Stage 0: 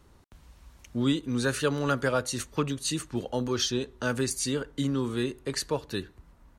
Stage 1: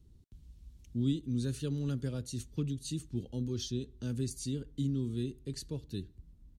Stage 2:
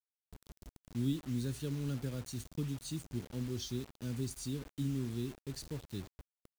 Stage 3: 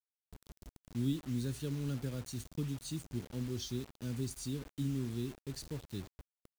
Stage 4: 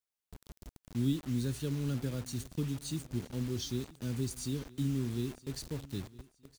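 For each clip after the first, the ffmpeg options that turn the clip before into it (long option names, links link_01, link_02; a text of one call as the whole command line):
ffmpeg -i in.wav -af "firequalizer=gain_entry='entry(110,0);entry(380,-10);entry(570,-21);entry(1100,-28);entry(3400,-12)':delay=0.05:min_phase=1" out.wav
ffmpeg -i in.wav -af "acrusher=bits=7:mix=0:aa=0.000001,volume=-3dB" out.wav
ffmpeg -i in.wav -af anull out.wav
ffmpeg -i in.wav -af "aecho=1:1:965|1930:0.0944|0.0264,volume=3dB" out.wav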